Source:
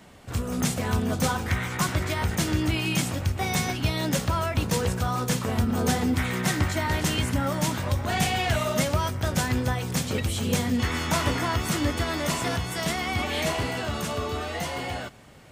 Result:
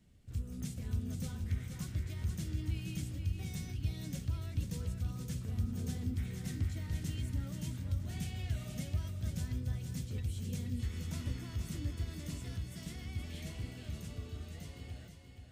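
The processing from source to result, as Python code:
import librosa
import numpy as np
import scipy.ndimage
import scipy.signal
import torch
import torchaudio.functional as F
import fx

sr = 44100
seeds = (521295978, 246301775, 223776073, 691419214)

y = fx.tone_stack(x, sr, knobs='10-0-1')
y = fx.echo_feedback(y, sr, ms=477, feedback_pct=25, wet_db=-7.0)
y = y * 10.0 ** (1.0 / 20.0)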